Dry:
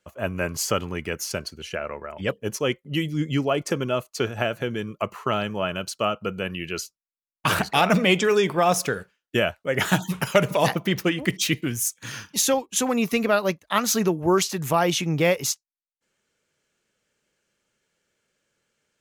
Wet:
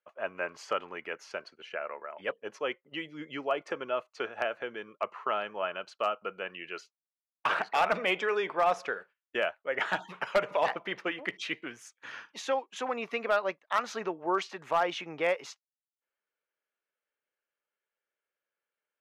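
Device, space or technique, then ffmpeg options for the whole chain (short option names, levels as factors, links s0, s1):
walkie-talkie: -af "highpass=580,lowpass=2200,asoftclip=type=hard:threshold=0.188,agate=range=0.355:threshold=0.00316:ratio=16:detection=peak,volume=0.668"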